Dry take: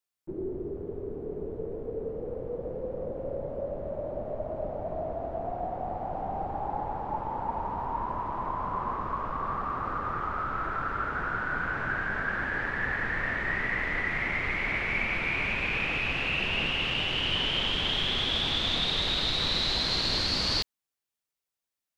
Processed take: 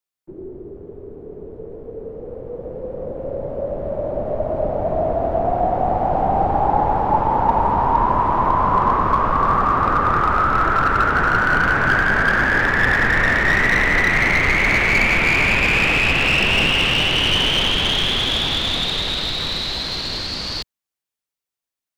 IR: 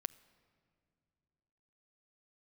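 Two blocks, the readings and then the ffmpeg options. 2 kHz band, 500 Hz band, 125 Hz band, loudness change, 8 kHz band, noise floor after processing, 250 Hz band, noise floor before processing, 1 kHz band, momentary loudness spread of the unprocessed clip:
+13.0 dB, +11.5 dB, +12.5 dB, +12.5 dB, n/a, under -85 dBFS, +12.0 dB, under -85 dBFS, +15.0 dB, 10 LU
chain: -filter_complex "[0:a]acrossover=split=110|890|4300[a][b][c][d];[c]aeval=exprs='clip(val(0),-1,0.0355)':c=same[e];[a][b][e][d]amix=inputs=4:normalize=0,dynaudnorm=f=270:g=31:m=17dB"

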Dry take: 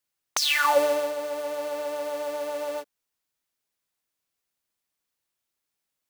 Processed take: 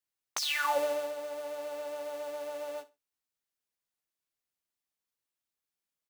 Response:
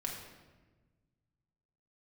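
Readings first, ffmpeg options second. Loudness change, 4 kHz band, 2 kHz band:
-8.0 dB, -8.0 dB, -8.0 dB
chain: -filter_complex "[0:a]asplit=2[a][b];[b]adelay=15,volume=-10.5dB[c];[a][c]amix=inputs=2:normalize=0,asplit=2[d][e];[e]aecho=0:1:65|130:0.119|0.0238[f];[d][f]amix=inputs=2:normalize=0,volume=-8.5dB"

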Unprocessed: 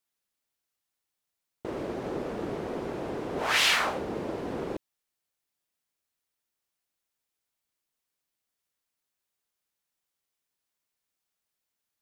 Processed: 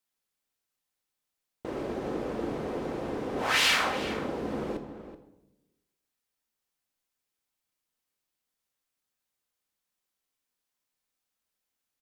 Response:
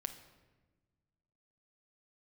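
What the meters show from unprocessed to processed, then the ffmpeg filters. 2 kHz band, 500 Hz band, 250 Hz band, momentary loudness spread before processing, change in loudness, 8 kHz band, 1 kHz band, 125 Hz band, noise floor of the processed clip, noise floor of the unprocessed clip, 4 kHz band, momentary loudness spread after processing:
0.0 dB, 0.0 dB, +1.5 dB, 15 LU, 0.0 dB, -0.5 dB, 0.0 dB, 0.0 dB, under -85 dBFS, -85 dBFS, -0.5 dB, 18 LU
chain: -filter_complex "[0:a]asplit=2[a][b];[b]adelay=379,volume=-12dB,highshelf=f=4k:g=-8.53[c];[a][c]amix=inputs=2:normalize=0[d];[1:a]atrim=start_sample=2205,asetrate=70560,aresample=44100[e];[d][e]afir=irnorm=-1:irlink=0,volume=5.5dB"

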